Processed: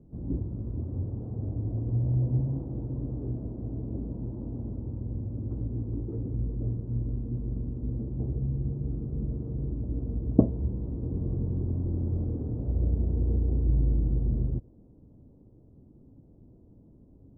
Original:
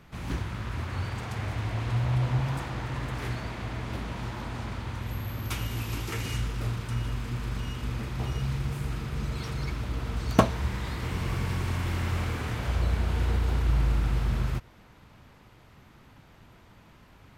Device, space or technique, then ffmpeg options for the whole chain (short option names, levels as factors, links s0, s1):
under water: -filter_complex "[0:a]lowpass=f=490:w=0.5412,lowpass=f=490:w=1.3066,equalizer=f=280:t=o:w=0.46:g=6,asettb=1/sr,asplit=3[s0][s1][s2];[s0]atrim=end=8.914[s3];[s1]atrim=start=8.91:end=9.48,asetpts=PTS-STARTPTS,afade=t=in:d=0.004:c=qsin,afade=t=out:st=0.566:d=0.004:c=qsin,highshelf=f=2900:g=9.5[s4];[s2]atrim=start=9.476[s5];[s3][s4]acrossfade=d=0.004:c1=hsin:c2=qsin[s6];[s6][s5]acrossfade=d=0.004:c1=qsin:c2=hsin"